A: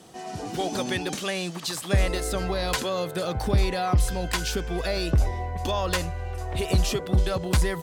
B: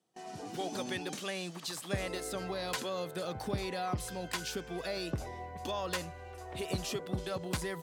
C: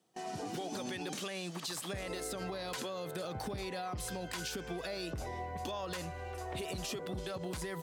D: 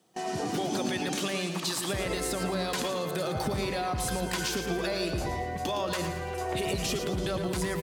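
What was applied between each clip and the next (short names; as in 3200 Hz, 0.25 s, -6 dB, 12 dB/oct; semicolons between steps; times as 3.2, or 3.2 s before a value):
HPF 130 Hz 12 dB/oct; gate with hold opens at -31 dBFS; gain -9 dB
limiter -30.5 dBFS, peak gain reduction 10.5 dB; compressor, threshold -41 dBFS, peak gain reduction 6.5 dB; gain +5 dB
feedback echo 0.113 s, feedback 46%, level -9 dB; on a send at -9 dB: reverb RT60 0.35 s, pre-delay 93 ms; on the sum: gain +8 dB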